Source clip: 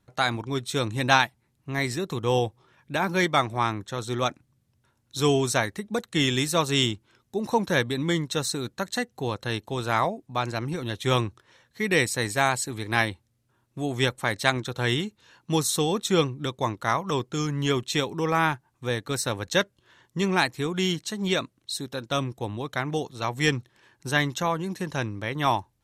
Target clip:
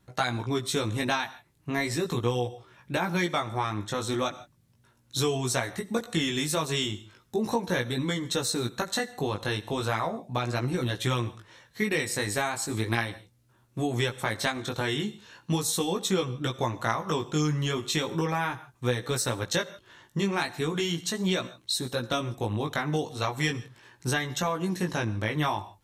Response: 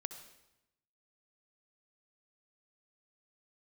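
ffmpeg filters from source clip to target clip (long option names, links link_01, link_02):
-filter_complex "[0:a]asplit=2[link_01][link_02];[link_02]highshelf=frequency=8700:gain=8[link_03];[1:a]atrim=start_sample=2205,afade=type=out:start_time=0.21:duration=0.01,atrim=end_sample=9702[link_04];[link_03][link_04]afir=irnorm=-1:irlink=0,volume=-6dB[link_05];[link_01][link_05]amix=inputs=2:normalize=0,acompressor=threshold=-26dB:ratio=6,flanger=delay=16:depth=3.7:speed=0.37,volume=4.5dB"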